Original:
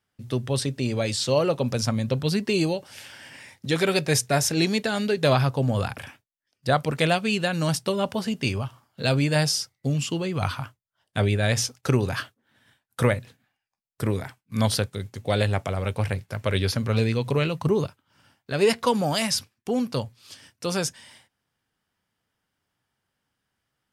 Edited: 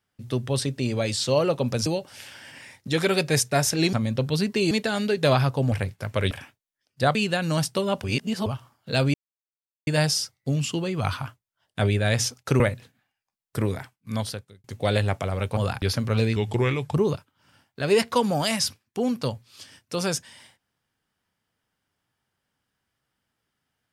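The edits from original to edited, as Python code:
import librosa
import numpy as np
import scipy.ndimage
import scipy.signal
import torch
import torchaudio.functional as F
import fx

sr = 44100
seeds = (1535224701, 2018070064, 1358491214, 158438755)

y = fx.edit(x, sr, fx.move(start_s=1.86, length_s=0.78, to_s=4.71),
    fx.swap(start_s=5.72, length_s=0.25, other_s=16.02, other_length_s=0.59),
    fx.cut(start_s=6.81, length_s=0.45),
    fx.reverse_span(start_s=8.15, length_s=0.42),
    fx.insert_silence(at_s=9.25, length_s=0.73),
    fx.cut(start_s=11.98, length_s=1.07),
    fx.fade_out_span(start_s=14.21, length_s=0.88),
    fx.speed_span(start_s=17.15, length_s=0.5, speed=0.86), tone=tone)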